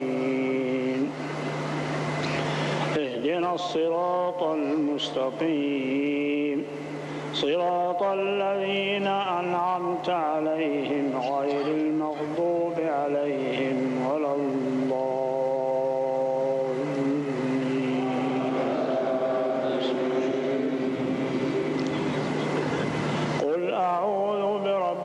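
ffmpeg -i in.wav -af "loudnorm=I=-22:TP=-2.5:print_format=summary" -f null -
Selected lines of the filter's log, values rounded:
Input Integrated:    -26.6 LUFS
Input True Peak:     -15.6 dBTP
Input LRA:             1.0 LU
Input Threshold:     -36.6 LUFS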